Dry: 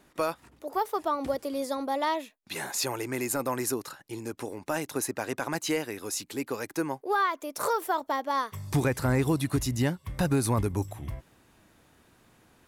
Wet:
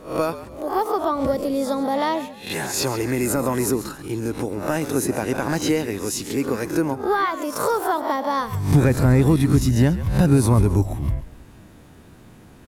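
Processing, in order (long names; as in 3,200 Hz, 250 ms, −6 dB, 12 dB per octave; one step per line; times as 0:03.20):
peak hold with a rise ahead of every peak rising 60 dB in 0.37 s
low-shelf EQ 430 Hz +10.5 dB
in parallel at 0 dB: downward compressor, threshold −32 dBFS, peak gain reduction 18.5 dB
on the sum: echo with shifted repeats 136 ms, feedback 33%, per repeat −56 Hz, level −14 dB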